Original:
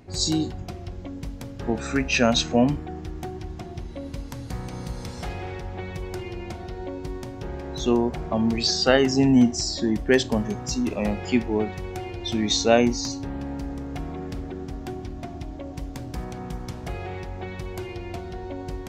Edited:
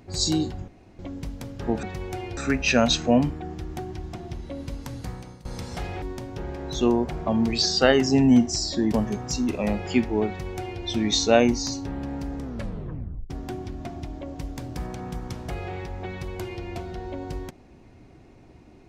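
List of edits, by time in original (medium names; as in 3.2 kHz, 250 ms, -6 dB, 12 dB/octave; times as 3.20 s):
0.68–0.99 s: room tone
4.43–4.91 s: fade out, to -20.5 dB
5.48–7.07 s: delete
9.98–10.31 s: delete
11.66–12.20 s: copy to 1.83 s
13.80 s: tape stop 0.88 s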